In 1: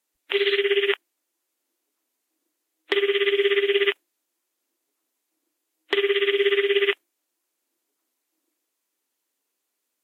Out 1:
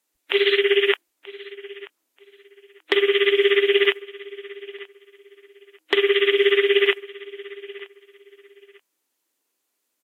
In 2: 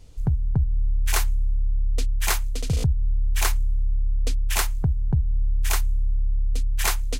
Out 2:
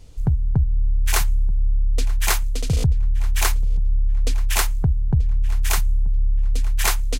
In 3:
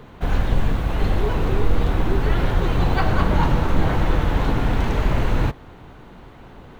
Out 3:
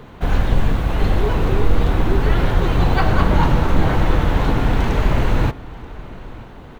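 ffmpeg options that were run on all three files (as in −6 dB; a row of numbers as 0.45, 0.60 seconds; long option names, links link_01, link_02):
-filter_complex "[0:a]asplit=2[link_01][link_02];[link_02]adelay=933,lowpass=frequency=4300:poles=1,volume=-19dB,asplit=2[link_03][link_04];[link_04]adelay=933,lowpass=frequency=4300:poles=1,volume=0.24[link_05];[link_01][link_03][link_05]amix=inputs=3:normalize=0,volume=3dB"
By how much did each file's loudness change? +3.0, +3.0, +3.0 LU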